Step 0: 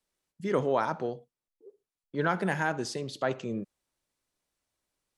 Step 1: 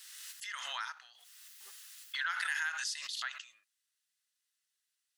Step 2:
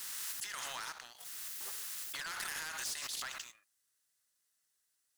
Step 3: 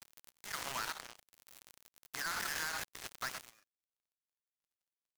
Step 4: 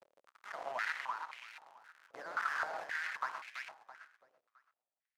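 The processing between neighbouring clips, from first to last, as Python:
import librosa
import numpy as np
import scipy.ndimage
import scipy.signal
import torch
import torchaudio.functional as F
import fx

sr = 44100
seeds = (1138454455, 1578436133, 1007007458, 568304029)

y1 = scipy.signal.sosfilt(scipy.signal.cheby2(4, 60, 480.0, 'highpass', fs=sr, output='sos'), x)
y1 = fx.notch(y1, sr, hz=2300.0, q=8.2)
y1 = fx.pre_swell(y1, sr, db_per_s=26.0)
y1 = y1 * librosa.db_to_amplitude(1.0)
y2 = fx.peak_eq(y1, sr, hz=3000.0, db=-9.5, octaves=1.6)
y2 = fx.leveller(y2, sr, passes=2)
y2 = fx.spectral_comp(y2, sr, ratio=2.0)
y3 = fx.dead_time(y2, sr, dead_ms=0.17)
y3 = y3 * librosa.db_to_amplitude(7.5)
y4 = fx.echo_feedback(y3, sr, ms=332, feedback_pct=34, wet_db=-5.0)
y4 = fx.filter_held_bandpass(y4, sr, hz=3.8, low_hz=550.0, high_hz=2300.0)
y4 = y4 * librosa.db_to_amplitude(10.5)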